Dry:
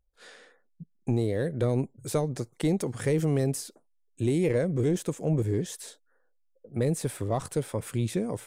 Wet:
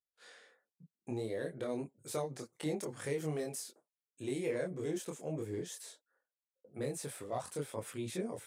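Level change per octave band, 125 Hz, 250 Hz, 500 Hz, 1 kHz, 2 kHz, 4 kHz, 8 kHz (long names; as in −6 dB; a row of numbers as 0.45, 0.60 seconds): −16.5, −12.0, −9.0, −7.0, −6.5, −6.5, −6.5 decibels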